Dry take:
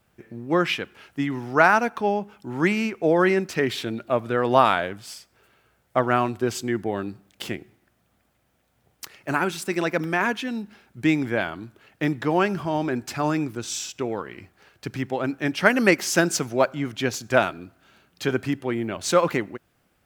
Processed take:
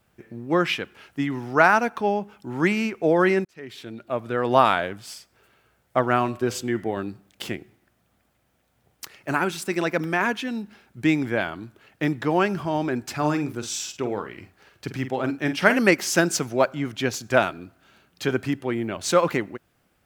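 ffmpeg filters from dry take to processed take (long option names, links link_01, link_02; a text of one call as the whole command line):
ffmpeg -i in.wav -filter_complex "[0:a]asettb=1/sr,asplit=3[link_01][link_02][link_03];[link_01]atrim=end=6.194[link_04];[link_02]atrim=start=6.19:end=6.97,asetpts=PTS-STARTPTS,afade=type=in:duration=0.004:curve=qsin,afade=type=out:start_time=0.776:duration=0.004:curve=qsin,bandreject=frequency=99.95:width_type=h:width=4,bandreject=frequency=199.9:width_type=h:width=4,bandreject=frequency=299.85:width_type=h:width=4,bandreject=frequency=399.8:width_type=h:width=4,bandreject=frequency=499.75:width_type=h:width=4,bandreject=frequency=599.7:width_type=h:width=4,bandreject=frequency=699.65:width_type=h:width=4,bandreject=frequency=799.6:width_type=h:width=4,bandreject=frequency=899.55:width_type=h:width=4,bandreject=frequency=999.5:width_type=h:width=4,bandreject=frequency=1099.45:width_type=h:width=4,bandreject=frequency=1199.4:width_type=h:width=4,bandreject=frequency=1299.35:width_type=h:width=4,bandreject=frequency=1399.3:width_type=h:width=4,bandreject=frequency=1499.25:width_type=h:width=4,bandreject=frequency=1599.2:width_type=h:width=4,bandreject=frequency=1699.15:width_type=h:width=4,bandreject=frequency=1799.1:width_type=h:width=4,bandreject=frequency=1899.05:width_type=h:width=4,bandreject=frequency=1999:width_type=h:width=4,bandreject=frequency=2098.95:width_type=h:width=4,bandreject=frequency=2198.9:width_type=h:width=4,bandreject=frequency=2298.85:width_type=h:width=4,bandreject=frequency=2398.8:width_type=h:width=4,bandreject=frequency=2498.75:width_type=h:width=4,bandreject=frequency=2598.7:width_type=h:width=4,bandreject=frequency=2698.65:width_type=h:width=4,bandreject=frequency=2798.6:width_type=h:width=4,bandreject=frequency=2898.55:width_type=h:width=4,bandreject=frequency=2998.5:width_type=h:width=4,bandreject=frequency=3098.45:width_type=h:width=4,bandreject=frequency=3198.4:width_type=h:width=4,bandreject=frequency=3298.35:width_type=h:width=4,bandreject=frequency=3398.3:width_type=h:width=4,bandreject=frequency=3498.25:width_type=h:width=4[link_05];[link_03]atrim=start=6.966[link_06];[link_04][link_05]acrossfade=duration=0.004:curve1=hsin:curve2=qsin[link_07];[link_07][link_06]acrossfade=duration=0.004:curve1=qsin:curve2=hsin,asettb=1/sr,asplit=3[link_08][link_09][link_10];[link_08]atrim=end=13.174[link_11];[link_09]atrim=start=13.17:end=15.79,asetpts=PTS-STARTPTS,afade=type=in:duration=0.004:curve=qsin,afade=type=out:start_time=2.616:duration=0.004:curve=qsin,asplit=2[link_12][link_13];[link_13]adelay=47,volume=-10dB[link_14];[link_12][link_14]amix=inputs=2:normalize=0,atrim=end_sample=115542[link_15];[link_10]atrim=start=15.786[link_16];[link_11][link_15]acrossfade=duration=0.004:curve1=hsin:curve2=qsin[link_17];[link_17][link_16]acrossfade=duration=0.004:curve1=qsin:curve2=hsin,asplit=2[link_18][link_19];[link_18]atrim=end=3.45,asetpts=PTS-STARTPTS,afade=type=out:start_time=3.446:duration=0.004:curve=hsin[link_20];[link_19]atrim=start=3.45,asetpts=PTS-STARTPTS,afade=type=in:duration=1.15[link_21];[link_20][link_21]concat=n=2:v=0:a=1" out.wav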